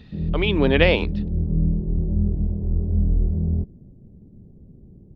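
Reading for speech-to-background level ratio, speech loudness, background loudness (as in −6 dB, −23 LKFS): 3.5 dB, −20.5 LKFS, −24.0 LKFS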